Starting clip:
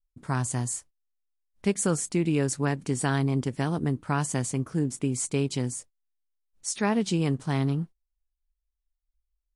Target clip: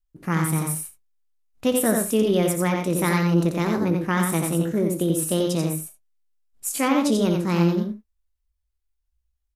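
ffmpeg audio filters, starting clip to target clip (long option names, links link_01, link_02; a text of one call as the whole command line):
ffmpeg -i in.wav -filter_complex "[0:a]asetrate=55563,aresample=44100,atempo=0.793701,asplit=2[link_01][link_02];[link_02]adelay=18,volume=-13dB[link_03];[link_01][link_03]amix=inputs=2:normalize=0,asplit=2[link_04][link_05];[link_05]aecho=0:1:60|88|126|164:0.251|0.631|0.188|0.106[link_06];[link_04][link_06]amix=inputs=2:normalize=0,volume=3dB" out.wav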